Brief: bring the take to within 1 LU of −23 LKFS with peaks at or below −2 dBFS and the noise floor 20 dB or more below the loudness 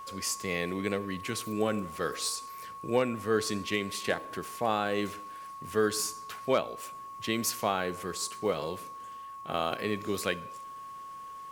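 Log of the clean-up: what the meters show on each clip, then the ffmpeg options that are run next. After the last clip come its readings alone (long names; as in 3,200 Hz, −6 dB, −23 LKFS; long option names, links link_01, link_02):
interfering tone 1,100 Hz; level of the tone −41 dBFS; integrated loudness −32.0 LKFS; sample peak −14.0 dBFS; target loudness −23.0 LKFS
→ -af "bandreject=frequency=1100:width=30"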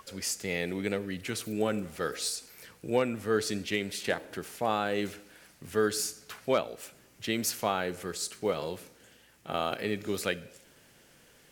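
interfering tone none found; integrated loudness −32.0 LKFS; sample peak −14.5 dBFS; target loudness −23.0 LKFS
→ -af "volume=9dB"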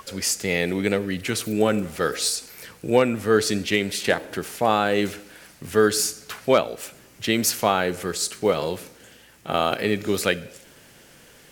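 integrated loudness −23.0 LKFS; sample peak −5.5 dBFS; background noise floor −51 dBFS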